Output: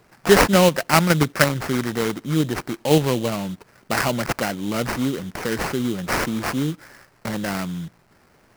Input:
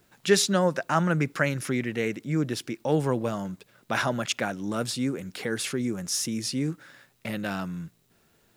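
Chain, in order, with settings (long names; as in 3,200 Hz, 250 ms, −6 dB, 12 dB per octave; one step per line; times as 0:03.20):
high-shelf EQ 4,800 Hz +2.5 dB
in parallel at −2 dB: output level in coarse steps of 23 dB
on the sum: sample-rate reduction 3,500 Hz, jitter 20%
level +4 dB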